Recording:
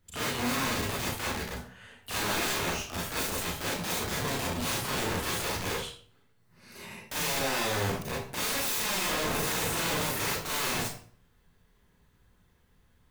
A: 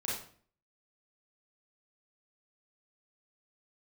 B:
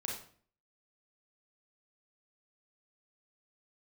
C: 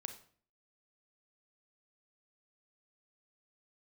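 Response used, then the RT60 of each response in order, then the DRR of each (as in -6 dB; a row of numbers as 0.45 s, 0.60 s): A; 0.50 s, 0.50 s, 0.50 s; -6.5 dB, -2.0 dB, 7.0 dB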